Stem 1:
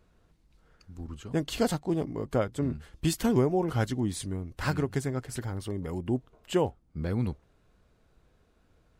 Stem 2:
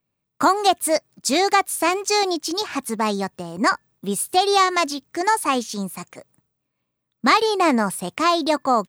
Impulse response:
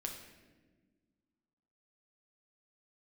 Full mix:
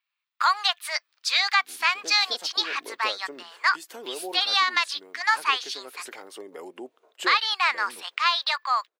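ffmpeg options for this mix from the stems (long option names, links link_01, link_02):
-filter_complex "[0:a]agate=range=-15dB:threshold=-56dB:ratio=16:detection=peak,acompressor=threshold=-34dB:ratio=2,adelay=700,volume=3dB[link_01];[1:a]highpass=frequency=1200:width=0.5412,highpass=frequency=1200:width=1.3066,highshelf=frequency=5700:width_type=q:width=1.5:gain=-13.5,alimiter=limit=-11dB:level=0:latency=1:release=182,volume=2dB,asplit=2[link_02][link_03];[link_03]apad=whole_len=431790[link_04];[link_01][link_04]sidechaincompress=threshold=-22dB:ratio=8:attack=20:release=1310[link_05];[link_05][link_02]amix=inputs=2:normalize=0,highpass=frequency=390:width=0.5412,highpass=frequency=390:width=1.3066"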